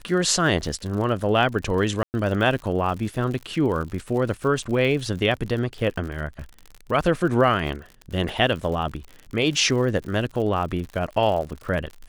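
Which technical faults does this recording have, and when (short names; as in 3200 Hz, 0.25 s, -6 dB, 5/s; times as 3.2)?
crackle 75/s -31 dBFS
2.03–2.14 gap 0.109 s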